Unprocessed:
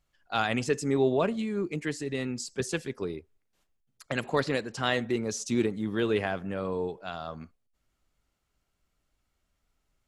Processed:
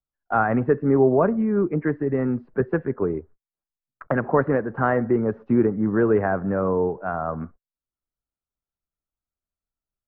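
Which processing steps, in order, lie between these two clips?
noise gate −54 dBFS, range −38 dB
Butterworth low-pass 1,600 Hz 36 dB per octave
multiband upward and downward compressor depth 40%
level +8.5 dB

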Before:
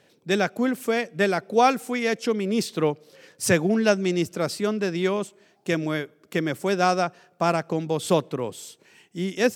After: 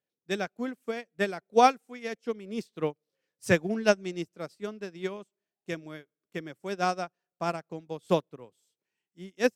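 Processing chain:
expander for the loud parts 2.5 to 1, over −36 dBFS

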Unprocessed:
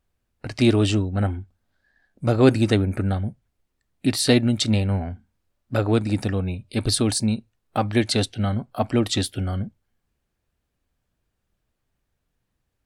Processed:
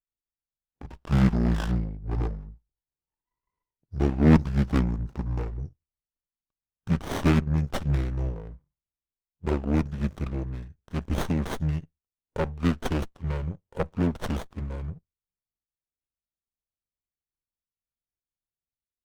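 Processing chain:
gliding playback speed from 54% → 81%
power curve on the samples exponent 1.4
windowed peak hold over 17 samples

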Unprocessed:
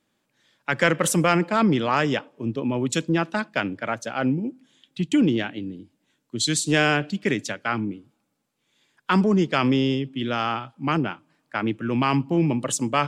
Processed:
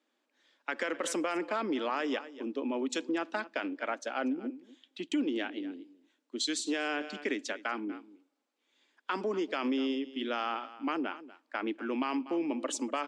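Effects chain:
low-pass filter 6,400 Hz 12 dB per octave
on a send: single-tap delay 241 ms −20 dB
on the sum: brickwall limiter −13 dBFS, peak gain reduction 8 dB
elliptic high-pass filter 260 Hz, stop band 60 dB
downward compressor 2 to 1, threshold −27 dBFS, peak gain reduction 6 dB
level −4 dB

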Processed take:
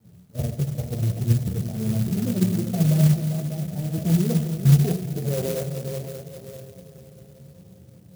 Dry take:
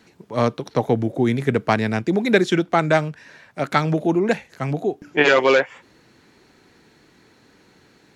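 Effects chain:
low shelf with overshoot 210 Hz +8 dB, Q 3
output level in coarse steps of 13 dB
volume swells 124 ms
Butterworth low-pass 730 Hz 48 dB per octave
surface crackle 540 per second −52 dBFS
high-pass filter 70 Hz 24 dB per octave
brickwall limiter −16 dBFS, peak gain reduction 8.5 dB
echo machine with several playback heads 197 ms, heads second and third, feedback 46%, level −10 dB
on a send at −5.5 dB: convolution reverb RT60 1.2 s, pre-delay 13 ms
on the sum: flanger 0.76 Hz, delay 8.8 ms, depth 6.3 ms, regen −17%
spectral tilt −2 dB per octave
converter with an unsteady clock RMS 0.11 ms
level +1.5 dB

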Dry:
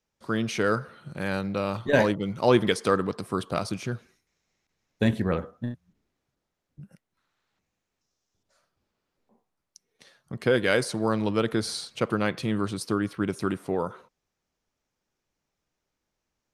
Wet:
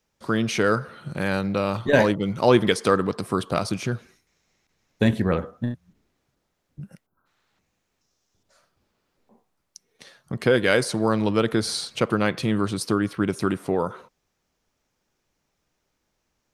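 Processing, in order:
gain on a spectral selection 0:07.06–0:07.26, 1,600–11,000 Hz −28 dB
in parallel at −2 dB: downward compressor, threshold −33 dBFS, peak gain reduction 17.5 dB
on the sum: level +2 dB

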